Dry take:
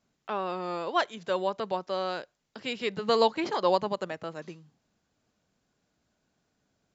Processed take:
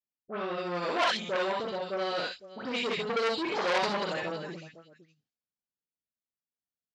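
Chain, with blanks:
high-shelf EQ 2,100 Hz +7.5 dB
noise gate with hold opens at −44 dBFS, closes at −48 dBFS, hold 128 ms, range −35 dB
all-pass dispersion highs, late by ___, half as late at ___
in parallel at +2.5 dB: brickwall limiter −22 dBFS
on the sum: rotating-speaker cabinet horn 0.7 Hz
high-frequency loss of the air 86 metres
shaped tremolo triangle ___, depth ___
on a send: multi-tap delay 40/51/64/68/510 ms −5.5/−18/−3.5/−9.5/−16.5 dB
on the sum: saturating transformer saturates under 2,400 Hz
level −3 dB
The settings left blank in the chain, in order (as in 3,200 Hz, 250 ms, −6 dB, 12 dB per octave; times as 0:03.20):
104 ms, 1,700 Hz, 12 Hz, 40%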